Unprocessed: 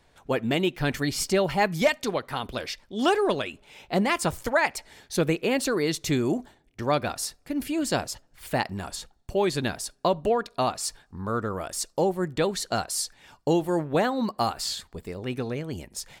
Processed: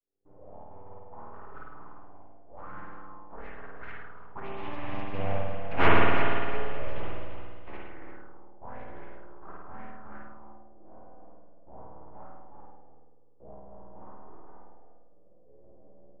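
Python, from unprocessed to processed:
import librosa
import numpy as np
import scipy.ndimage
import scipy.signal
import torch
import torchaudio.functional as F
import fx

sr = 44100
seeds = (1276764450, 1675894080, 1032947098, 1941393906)

y = fx.chord_vocoder(x, sr, chord='minor triad', root=52)
y = fx.doppler_pass(y, sr, speed_mps=55, closest_m=7.0, pass_at_s=5.89)
y = fx.hum_notches(y, sr, base_hz=60, count=5)
y = np.abs(y)
y = fx.echo_feedback(y, sr, ms=343, feedback_pct=26, wet_db=-8.5)
y = fx.rev_spring(y, sr, rt60_s=1.6, pass_ms=(51,), chirp_ms=75, drr_db=-5.0)
y = fx.envelope_lowpass(y, sr, base_hz=440.0, top_hz=2600.0, q=2.7, full_db=-35.5, direction='up')
y = y * librosa.db_to_amplitude(4.5)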